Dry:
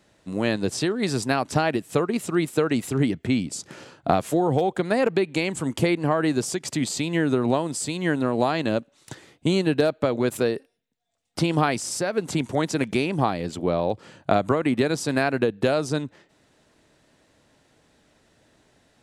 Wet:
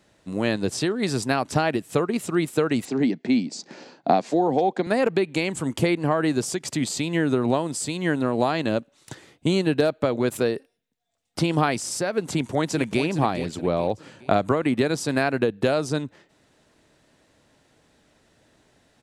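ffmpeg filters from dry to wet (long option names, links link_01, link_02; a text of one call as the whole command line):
ffmpeg -i in.wav -filter_complex "[0:a]asettb=1/sr,asplit=3[link_01][link_02][link_03];[link_01]atrim=end=2.854[link_04];[link_02]atrim=start=2.85:end=4.87,asetpts=PTS-STARTPTS,afade=type=in:duration=0.004:curve=qsin,afade=type=out:start_time=2.016:duration=0.004:curve=qsin,highpass=frequency=180:width=0.5412,highpass=frequency=180:width=1.3066,equalizer=frequency=240:width_type=q:width=4:gain=4,equalizer=frequency=770:width_type=q:width=4:gain=4,equalizer=frequency=1300:width_type=q:width=4:gain=-7,equalizer=frequency=3100:width_type=q:width=4:gain=-5,equalizer=frequency=4500:width_type=q:width=4:gain=4,lowpass=frequency=6500:width=0.5412,lowpass=frequency=6500:width=1.3066[link_05];[link_03]atrim=start=4.866[link_06];[link_04][link_05]acrossfade=duration=0.004:curve1=hsin:curve2=qsin[link_07];[link_07][link_06]acrossfade=duration=0.004:curve1=qsin:curve2=hsin,asplit=2[link_08][link_09];[link_09]afade=type=in:start_time=12.23:duration=0.01,afade=type=out:start_time=13.03:duration=0.01,aecho=0:1:420|840|1260|1680:0.298538|0.119415|0.0477661|0.0191064[link_10];[link_08][link_10]amix=inputs=2:normalize=0" out.wav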